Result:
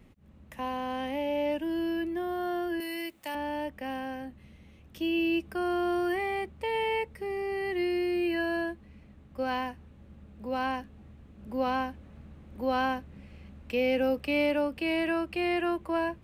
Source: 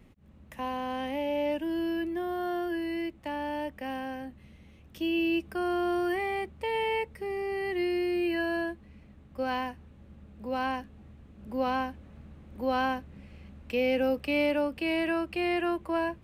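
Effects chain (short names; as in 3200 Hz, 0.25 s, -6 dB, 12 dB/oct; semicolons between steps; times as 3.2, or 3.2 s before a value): 2.8–3.35 RIAA curve recording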